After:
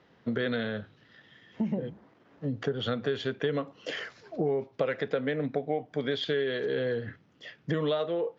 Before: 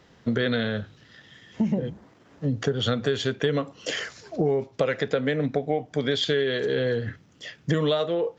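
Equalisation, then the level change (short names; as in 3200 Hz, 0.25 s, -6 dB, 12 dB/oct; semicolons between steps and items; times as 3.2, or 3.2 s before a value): HPF 170 Hz 6 dB/oct; air absorption 180 m; -3.5 dB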